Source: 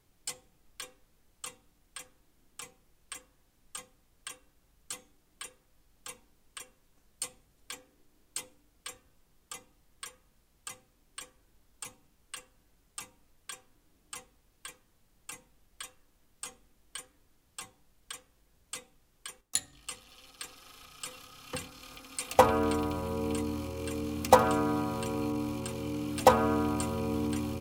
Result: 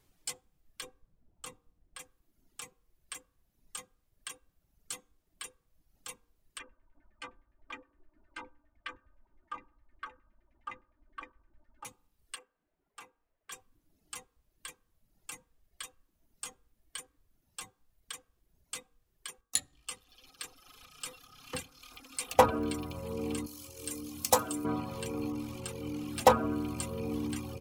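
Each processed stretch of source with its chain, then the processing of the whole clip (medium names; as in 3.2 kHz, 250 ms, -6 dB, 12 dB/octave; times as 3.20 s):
0.82–2.00 s: tilt shelf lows +4.5 dB, about 1.1 kHz + tape noise reduction on one side only decoder only
6.59–11.85 s: comb 3.3 ms, depth 96% + LFO low-pass saw down 9.7 Hz 840–2200 Hz
12.36–13.51 s: three-band isolator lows -14 dB, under 290 Hz, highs -15 dB, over 2.5 kHz + doubling 36 ms -14 dB
23.46–24.65 s: tone controls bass -2 dB, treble +14 dB + feedback comb 97 Hz, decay 0.23 s, harmonics odd
whole clip: de-hum 47.39 Hz, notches 34; reverb removal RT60 1.1 s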